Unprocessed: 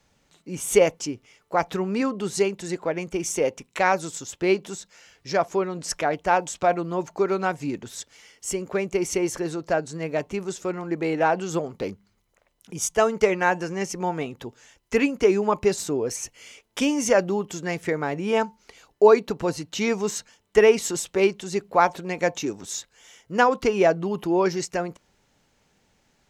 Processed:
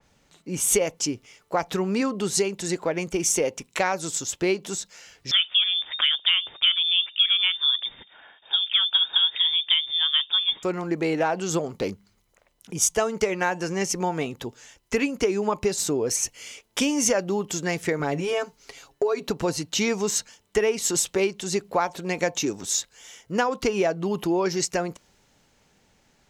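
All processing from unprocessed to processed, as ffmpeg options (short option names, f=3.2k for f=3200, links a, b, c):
-filter_complex "[0:a]asettb=1/sr,asplit=3[a][b][c];[a]atrim=end=5.314[d];[b]atrim=start=5.31:end=10.63,asetpts=PTS-STARTPTS,afade=t=in:d=0.004:c=qsin,afade=t=out:st=5.316:d=0.004:c=qsin,lowshelf=f=130:g=11,lowpass=f=3.1k:t=q:w=0.5098,lowpass=f=3.1k:t=q:w=0.6013,lowpass=f=3.1k:t=q:w=0.9,lowpass=f=3.1k:t=q:w=2.563,afreqshift=-3700[e];[c]atrim=start=10.626[f];[d][e]acrossfade=d=0.004:c1=hsin:c2=qsin[g];[g][f]acrossfade=d=0.004:c1=qsin:c2=hsin,asettb=1/sr,asplit=3[h][i][j];[h]atrim=end=17.994[k];[i]atrim=start=17.99:end=19.28,asetpts=PTS-STARTPTS,afade=t=in:d=0.004:c=qsin,afade=t=out:st=1.286:d=0.004:c=qsin,acompressor=threshold=-24dB:ratio=3:attack=3.2:release=140:knee=1:detection=peak,bandreject=f=220:w=7.1,aecho=1:1:7.3:0.64,atrim=end_sample=56889[l];[j]atrim=start=19.276[m];[k][l]acrossfade=d=0.004:c1=hsin:c2=qsin[n];[n][m]acrossfade=d=0.004:c1=qsin:c2=hsin,acompressor=threshold=-23dB:ratio=4,adynamicequalizer=threshold=0.00447:dfrequency=3000:dqfactor=0.7:tfrequency=3000:tqfactor=0.7:attack=5:release=100:ratio=0.375:range=2.5:mode=boostabove:tftype=highshelf,volume=2.5dB"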